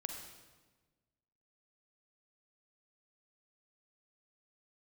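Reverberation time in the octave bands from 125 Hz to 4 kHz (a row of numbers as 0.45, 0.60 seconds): 1.7, 1.6, 1.4, 1.2, 1.1, 1.1 seconds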